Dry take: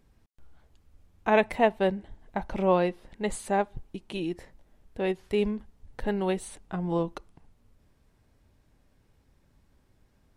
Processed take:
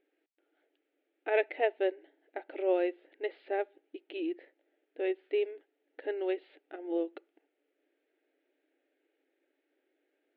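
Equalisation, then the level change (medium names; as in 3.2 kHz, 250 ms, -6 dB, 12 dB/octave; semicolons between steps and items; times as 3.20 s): brick-wall FIR band-pass 280–5900 Hz; distance through air 340 m; static phaser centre 2.5 kHz, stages 4; 0.0 dB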